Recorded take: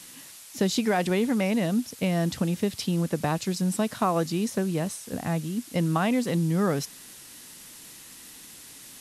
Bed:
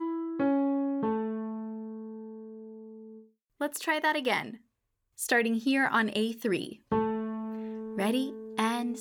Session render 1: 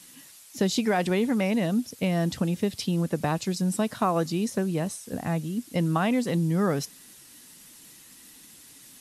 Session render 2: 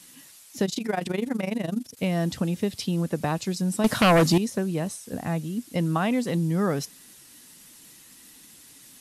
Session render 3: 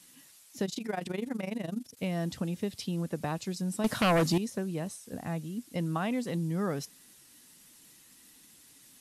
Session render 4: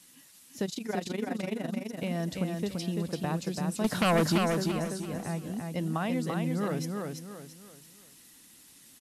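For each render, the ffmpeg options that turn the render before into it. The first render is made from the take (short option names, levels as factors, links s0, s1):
-af "afftdn=nr=6:nf=-47"
-filter_complex "[0:a]asettb=1/sr,asplit=3[s0][s1][s2];[s0]atrim=end=0.654[s3];[s1]atrim=start=0.65:end=1.97,asetpts=PTS-STARTPTS,afade=t=in:d=0.004:c=qsin,afade=t=out:st=1.316:d=0.004:c=qsin,tremolo=f=24:d=0.857[s4];[s2]atrim=start=1.966[s5];[s3][s4]acrossfade=d=0.004:c1=hsin:c2=qsin[s6];[s6][s5]acrossfade=d=0.004:c1=qsin:c2=hsin,asettb=1/sr,asplit=3[s7][s8][s9];[s7]atrim=end=3.844[s10];[s8]atrim=start=3.84:end=4.38,asetpts=PTS-STARTPTS,afade=t=in:d=0.004:c=qsin,afade=t=out:st=0.536:d=0.004:c=qsin,aeval=exprs='0.211*sin(PI/2*2.51*val(0)/0.211)':c=same[s11];[s9]atrim=start=4.376[s12];[s10][s11]acrossfade=d=0.004:c1=hsin:c2=qsin[s13];[s13][s12]acrossfade=d=0.004:c1=qsin:c2=hsin"
-af "volume=0.447"
-af "aecho=1:1:338|676|1014|1352:0.631|0.221|0.0773|0.0271"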